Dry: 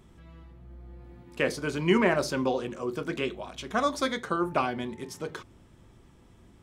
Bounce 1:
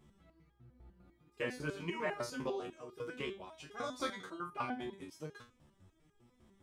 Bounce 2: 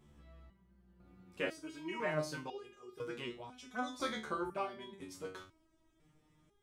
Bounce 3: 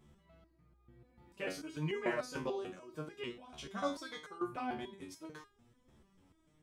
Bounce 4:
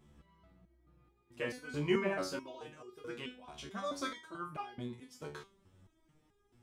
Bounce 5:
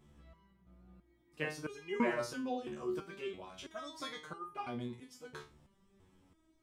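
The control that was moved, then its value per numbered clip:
step-sequenced resonator, speed: 10, 2, 6.8, 4.6, 3 Hertz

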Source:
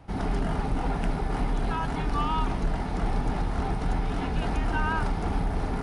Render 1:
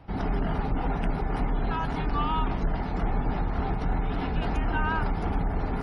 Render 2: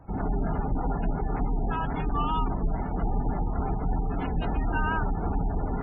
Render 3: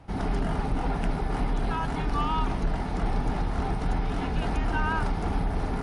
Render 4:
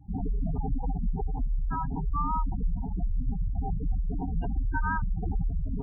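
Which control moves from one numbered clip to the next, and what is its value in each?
gate on every frequency bin, under each frame's peak: −40, −25, −55, −10 decibels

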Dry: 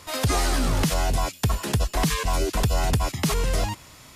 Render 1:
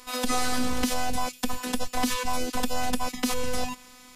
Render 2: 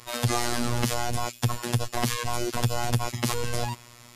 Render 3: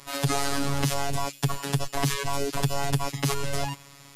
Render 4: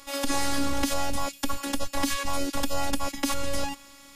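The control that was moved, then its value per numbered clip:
phases set to zero, frequency: 250, 120, 140, 280 Hertz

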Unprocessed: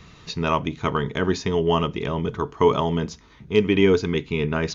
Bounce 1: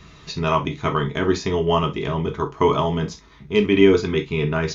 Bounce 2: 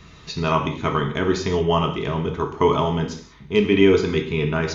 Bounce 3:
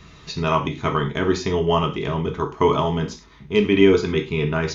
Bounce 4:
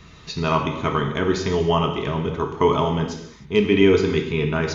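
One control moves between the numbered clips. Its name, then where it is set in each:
reverb whose tail is shaped and stops, gate: 90, 220, 130, 330 milliseconds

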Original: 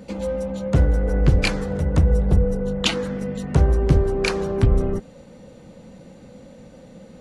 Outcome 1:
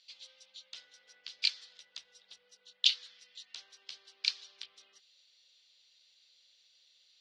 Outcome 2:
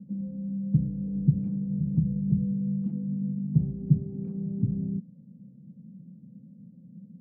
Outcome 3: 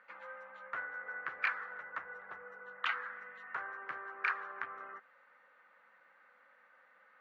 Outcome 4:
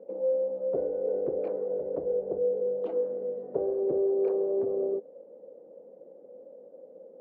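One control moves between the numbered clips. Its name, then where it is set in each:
flat-topped band-pass, frequency: 4,100, 170, 1,500, 480 Hertz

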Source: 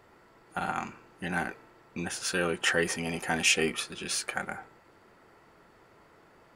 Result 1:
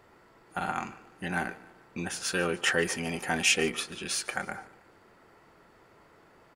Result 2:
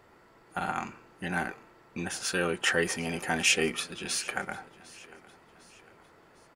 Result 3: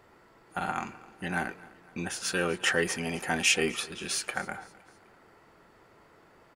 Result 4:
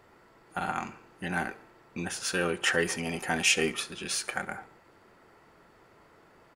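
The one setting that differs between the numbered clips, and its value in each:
repeating echo, delay time: 147, 753, 256, 69 milliseconds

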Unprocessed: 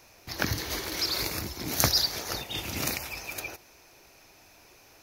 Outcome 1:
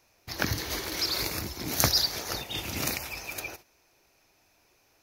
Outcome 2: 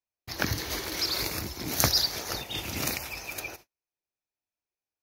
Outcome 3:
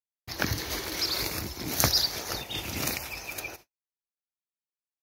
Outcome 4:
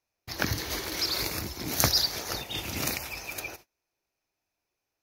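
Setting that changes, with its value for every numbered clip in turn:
noise gate, range: −10, −42, −56, −29 decibels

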